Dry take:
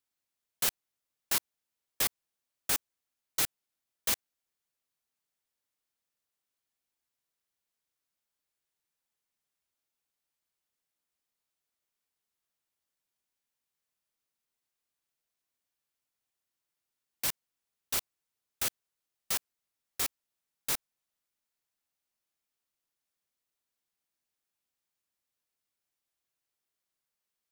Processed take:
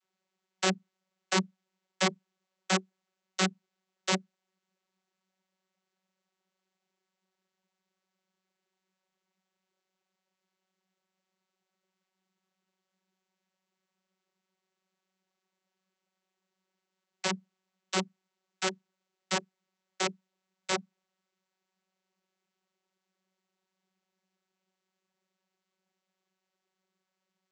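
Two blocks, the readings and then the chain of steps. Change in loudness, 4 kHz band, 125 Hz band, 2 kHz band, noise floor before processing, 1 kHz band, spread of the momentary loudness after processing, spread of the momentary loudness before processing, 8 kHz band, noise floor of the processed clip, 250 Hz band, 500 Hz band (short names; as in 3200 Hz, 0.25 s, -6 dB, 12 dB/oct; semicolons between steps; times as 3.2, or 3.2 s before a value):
0.0 dB, +3.0 dB, +14.0 dB, +6.5 dB, under -85 dBFS, +9.5 dB, 9 LU, 4 LU, -3.0 dB, under -85 dBFS, +16.5 dB, +13.0 dB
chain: vocoder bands 32, saw 188 Hz; gain +7.5 dB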